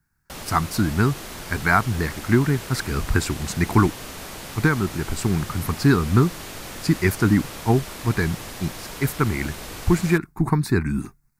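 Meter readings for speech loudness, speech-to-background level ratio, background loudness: -23.0 LUFS, 12.0 dB, -35.0 LUFS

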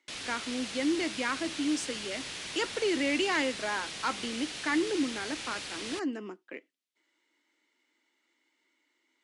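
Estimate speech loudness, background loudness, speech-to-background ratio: -32.5 LUFS, -38.0 LUFS, 5.5 dB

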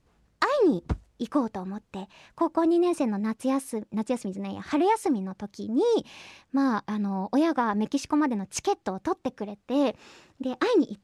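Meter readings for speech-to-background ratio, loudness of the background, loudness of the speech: 8.5 dB, -35.5 LUFS, -27.0 LUFS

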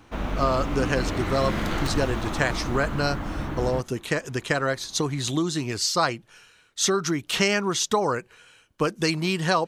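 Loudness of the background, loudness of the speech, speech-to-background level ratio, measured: -30.0 LUFS, -25.5 LUFS, 4.5 dB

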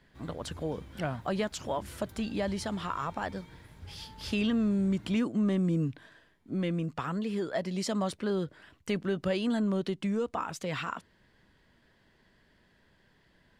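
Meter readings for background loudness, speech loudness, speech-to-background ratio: -50.5 LUFS, -32.0 LUFS, 18.5 dB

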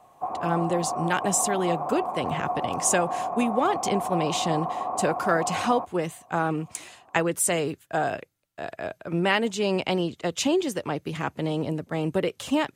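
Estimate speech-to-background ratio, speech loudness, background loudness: 3.5 dB, -27.0 LUFS, -30.5 LUFS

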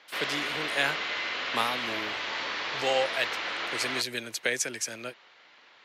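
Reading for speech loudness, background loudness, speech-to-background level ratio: -31.5 LUFS, -31.0 LUFS, -0.5 dB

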